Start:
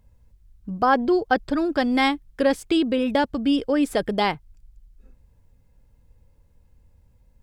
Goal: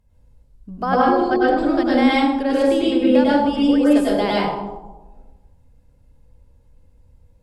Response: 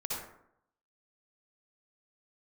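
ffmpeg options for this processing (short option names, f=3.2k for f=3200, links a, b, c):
-filter_complex "[0:a]asettb=1/sr,asplit=3[a][b][c];[a]atrim=end=0.924[d];[b]atrim=start=0.92:end=3.12,asetpts=PTS-STARTPTS,afade=t=in:d=0.004:c=qsin,afade=t=out:st=2.196:d=0.004:c=qsin,highshelf=f=8.3k:g=-5.5[e];[c]atrim=start=3.116[f];[d][e]acrossfade=d=0.004:c1=hsin:c2=qsin[g];[g][f]acrossfade=d=0.004:c1=qsin:c2=hsin[h];[1:a]atrim=start_sample=2205,asetrate=26019,aresample=44100[i];[h][i]afir=irnorm=-1:irlink=0,volume=-3.5dB"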